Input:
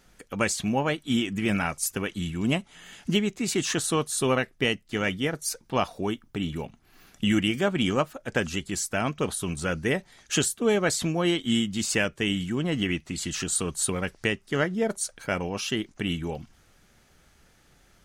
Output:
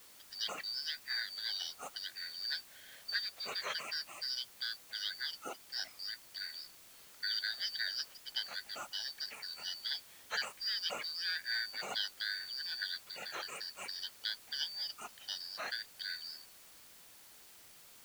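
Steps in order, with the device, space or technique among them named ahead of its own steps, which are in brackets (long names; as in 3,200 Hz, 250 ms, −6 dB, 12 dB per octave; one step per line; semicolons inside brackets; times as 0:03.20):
0:04.06–0:04.80: dynamic equaliser 3,700 Hz, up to −7 dB, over −40 dBFS, Q 0.75
split-band scrambled radio (band-splitting scrambler in four parts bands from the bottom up 4321; band-pass filter 330–2,800 Hz; white noise bed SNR 16 dB)
level −5.5 dB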